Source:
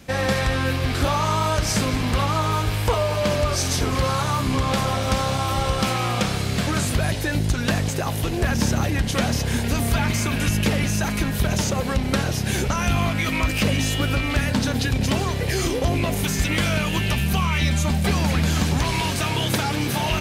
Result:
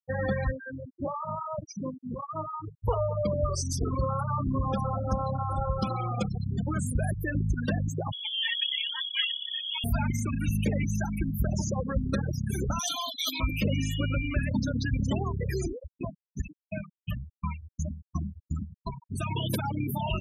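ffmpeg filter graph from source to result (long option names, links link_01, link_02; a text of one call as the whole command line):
ffmpeg -i in.wav -filter_complex "[0:a]asettb=1/sr,asplit=3[link_01][link_02][link_03];[link_01]atrim=end=0.514[link_04];[link_02]atrim=start=0.51:end=2.84,asetpts=PTS-STARTPTS,afade=type=in:duration=0.004:curve=qsin,afade=type=out:start_time=2.326:duration=0.004:curve=qsin,highpass=160,highshelf=frequency=6000:gain=-11,acrossover=split=1100[link_05][link_06];[link_05]aeval=exprs='val(0)*(1-0.7/2+0.7/2*cos(2*PI*3.7*n/s))':channel_layout=same[link_07];[link_06]aeval=exprs='val(0)*(1-0.7/2-0.7/2*cos(2*PI*3.7*n/s))':channel_layout=same[link_08];[link_07][link_08]amix=inputs=2:normalize=0[link_09];[link_03]atrim=start=2.836[link_10];[link_04][link_09]acrossfade=duration=0.004:curve1=hsin:curve2=qsin[link_11];[link_11][link_10]acrossfade=duration=0.004:curve1=qsin:curve2=hsin,asettb=1/sr,asplit=3[link_12][link_13][link_14];[link_12]atrim=end=8.124[link_15];[link_13]atrim=start=8.12:end=9.84,asetpts=PTS-STARTPTS,afade=type=in:duration=0.004:curve=qsin,afade=type=out:start_time=1.716:duration=0.004:curve=qsin,lowshelf=frequency=150:gain=-9,aecho=1:1:5.4:0.75,atrim=end_sample=75852,lowpass=frequency=3000:width_type=q:width=0.5098,lowpass=frequency=3000:width_type=q:width=0.6013,lowpass=frequency=3000:width_type=q:width=0.9,lowpass=frequency=3000:width_type=q:width=2.563,afreqshift=-3500[link_16];[link_14]atrim=start=9.836[link_17];[link_15][link_16]acrossfade=duration=0.004:curve1=hsin:curve2=qsin[link_18];[link_18][link_17]acrossfade=duration=0.004:curve1=qsin:curve2=hsin,asettb=1/sr,asplit=3[link_19][link_20][link_21];[link_19]atrim=end=12.794[link_22];[link_20]atrim=start=12.79:end=13.4,asetpts=PTS-STARTPTS,afade=type=in:duration=0.004:curve=qsin,afade=type=out:start_time=0.606:duration=0.004:curve=qsin,highpass=360,highshelf=frequency=2900:width_type=q:width=3:gain=7.5,aecho=1:1:6.7:0.38,atrim=end_sample=26901[link_23];[link_21]atrim=start=13.396[link_24];[link_22][link_23]acrossfade=duration=0.004:curve1=hsin:curve2=qsin[link_25];[link_25][link_24]acrossfade=duration=0.004:curve1=qsin:curve2=hsin,asettb=1/sr,asplit=3[link_26][link_27][link_28];[link_26]atrim=end=15.654[link_29];[link_27]atrim=start=15.65:end=19.11,asetpts=PTS-STARTPTS,afade=type=in:duration=0.004:curve=qsin,afade=type=out:start_time=3.456:duration=0.004:curve=qsin,bandreject=frequency=50:width_type=h:width=6,bandreject=frequency=100:width_type=h:width=6,bandreject=frequency=150:width_type=h:width=6,aeval=exprs='val(0)*pow(10,-22*if(lt(mod(2.8*n/s,1),2*abs(2.8)/1000),1-mod(2.8*n/s,1)/(2*abs(2.8)/1000),(mod(2.8*n/s,1)-2*abs(2.8)/1000)/(1-2*abs(2.8)/1000))/20)':channel_layout=same[link_30];[link_28]atrim=start=19.106[link_31];[link_29][link_30]acrossfade=duration=0.004:curve1=hsin:curve2=qsin[link_32];[link_32][link_31]acrossfade=duration=0.004:curve1=qsin:curve2=hsin,aemphasis=mode=production:type=50fm,afftfilt=real='re*gte(hypot(re,im),0.178)':imag='im*gte(hypot(re,im),0.178)':win_size=1024:overlap=0.75,highshelf=frequency=3700:gain=-10.5,volume=-5dB" out.wav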